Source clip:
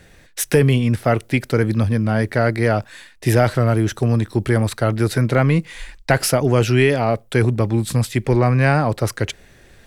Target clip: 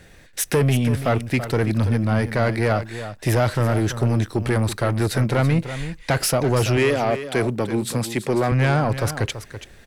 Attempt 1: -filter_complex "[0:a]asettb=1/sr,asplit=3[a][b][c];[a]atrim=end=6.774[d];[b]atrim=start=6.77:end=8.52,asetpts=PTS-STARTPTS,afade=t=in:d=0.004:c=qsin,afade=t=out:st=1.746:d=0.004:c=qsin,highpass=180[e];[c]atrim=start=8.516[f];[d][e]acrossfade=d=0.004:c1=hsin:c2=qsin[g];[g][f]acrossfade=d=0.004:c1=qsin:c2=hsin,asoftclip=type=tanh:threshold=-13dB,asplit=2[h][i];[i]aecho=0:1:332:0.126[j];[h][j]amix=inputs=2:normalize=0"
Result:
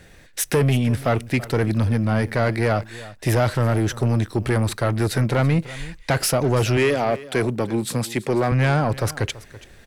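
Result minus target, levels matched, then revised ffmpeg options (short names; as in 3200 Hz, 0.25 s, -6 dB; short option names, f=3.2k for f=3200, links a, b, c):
echo-to-direct -6.5 dB
-filter_complex "[0:a]asettb=1/sr,asplit=3[a][b][c];[a]atrim=end=6.774[d];[b]atrim=start=6.77:end=8.52,asetpts=PTS-STARTPTS,afade=t=in:d=0.004:c=qsin,afade=t=out:st=1.746:d=0.004:c=qsin,highpass=180[e];[c]atrim=start=8.516[f];[d][e]acrossfade=d=0.004:c1=hsin:c2=qsin[g];[g][f]acrossfade=d=0.004:c1=qsin:c2=hsin,asoftclip=type=tanh:threshold=-13dB,asplit=2[h][i];[i]aecho=0:1:332:0.266[j];[h][j]amix=inputs=2:normalize=0"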